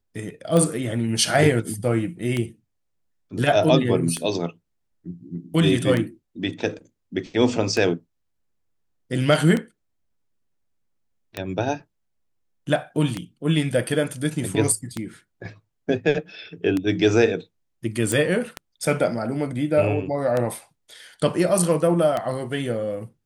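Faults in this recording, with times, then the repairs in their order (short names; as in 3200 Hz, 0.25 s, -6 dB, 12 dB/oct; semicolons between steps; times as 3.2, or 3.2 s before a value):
tick 33 1/3 rpm -11 dBFS
18.12 pop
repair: de-click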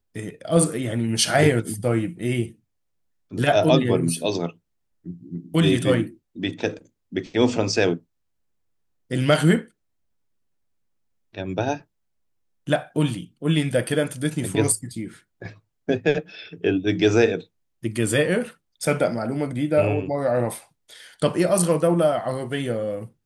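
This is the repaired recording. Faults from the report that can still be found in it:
none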